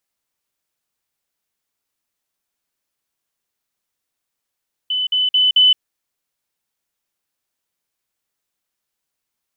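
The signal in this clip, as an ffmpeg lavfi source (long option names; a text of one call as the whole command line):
ffmpeg -f lavfi -i "aevalsrc='pow(10,(-17+3*floor(t/0.22))/20)*sin(2*PI*3010*t)*clip(min(mod(t,0.22),0.17-mod(t,0.22))/0.005,0,1)':duration=0.88:sample_rate=44100" out.wav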